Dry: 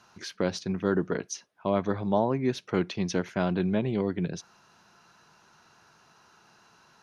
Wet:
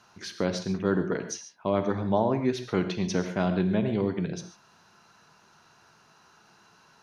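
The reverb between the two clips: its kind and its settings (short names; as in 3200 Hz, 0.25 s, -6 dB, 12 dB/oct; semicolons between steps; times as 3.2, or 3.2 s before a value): non-linear reverb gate 0.17 s flat, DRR 8 dB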